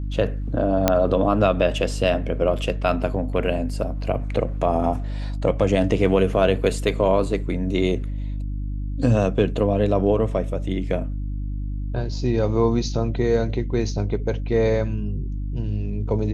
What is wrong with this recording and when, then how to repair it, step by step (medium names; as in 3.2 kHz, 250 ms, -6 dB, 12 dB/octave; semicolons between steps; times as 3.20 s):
hum 50 Hz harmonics 6 -27 dBFS
0.88 s: pop -2 dBFS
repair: de-click; de-hum 50 Hz, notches 6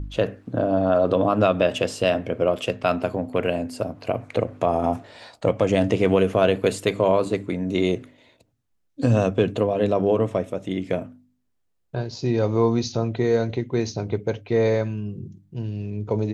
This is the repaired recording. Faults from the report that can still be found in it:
nothing left